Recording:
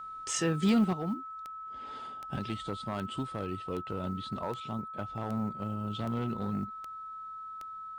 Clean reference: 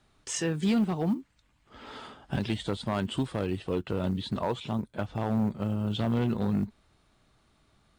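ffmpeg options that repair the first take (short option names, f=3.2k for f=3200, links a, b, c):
-af "adeclick=t=4,bandreject=f=1.3k:w=30,asetnsamples=n=441:p=0,asendcmd='0.93 volume volume 6.5dB',volume=0dB"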